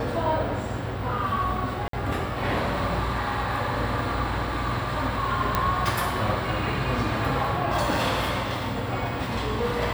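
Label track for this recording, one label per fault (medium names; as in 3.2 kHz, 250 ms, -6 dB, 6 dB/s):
1.880000	1.930000	dropout 53 ms
5.550000	5.550000	pop -8 dBFS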